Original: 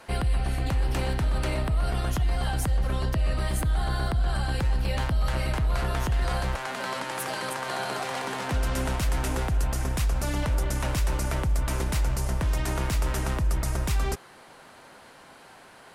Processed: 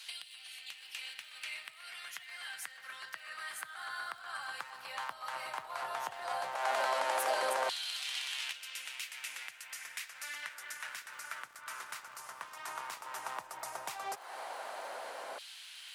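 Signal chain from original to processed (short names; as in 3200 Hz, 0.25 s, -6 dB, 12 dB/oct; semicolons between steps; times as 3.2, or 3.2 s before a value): 10.67–13.22 octaver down 2 oct, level +1 dB; dynamic EQ 130 Hz, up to +6 dB, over -43 dBFS; compressor 10:1, threshold -35 dBFS, peak gain reduction 19 dB; crackle 250/s -55 dBFS; LFO high-pass saw down 0.13 Hz 560–3400 Hz; gain +3.5 dB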